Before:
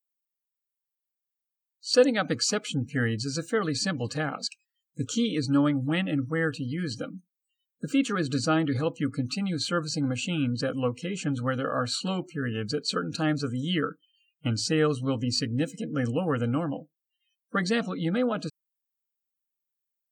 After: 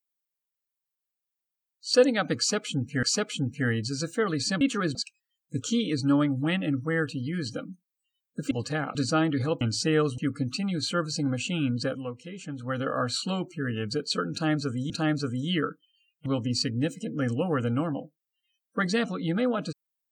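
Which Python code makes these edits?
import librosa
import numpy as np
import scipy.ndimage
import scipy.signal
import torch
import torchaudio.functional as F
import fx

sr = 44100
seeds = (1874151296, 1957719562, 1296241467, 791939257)

y = fx.edit(x, sr, fx.repeat(start_s=2.38, length_s=0.65, count=2),
    fx.swap(start_s=3.96, length_s=0.44, other_s=7.96, other_length_s=0.34),
    fx.fade_down_up(start_s=10.64, length_s=0.94, db=-8.0, fade_s=0.18),
    fx.repeat(start_s=13.1, length_s=0.58, count=2),
    fx.move(start_s=14.46, length_s=0.57, to_s=8.96), tone=tone)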